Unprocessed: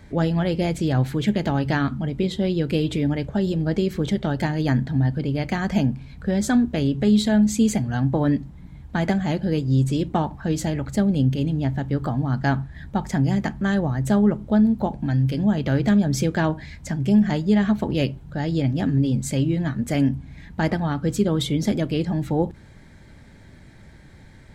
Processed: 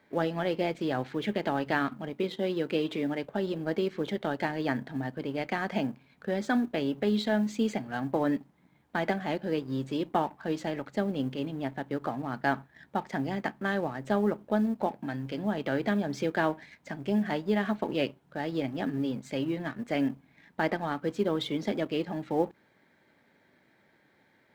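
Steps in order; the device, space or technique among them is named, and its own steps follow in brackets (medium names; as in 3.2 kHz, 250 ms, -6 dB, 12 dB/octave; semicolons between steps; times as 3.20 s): phone line with mismatched companding (band-pass 330–3400 Hz; companding laws mixed up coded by A); 2.13–3.24 s: high-pass 120 Hz; trim -2 dB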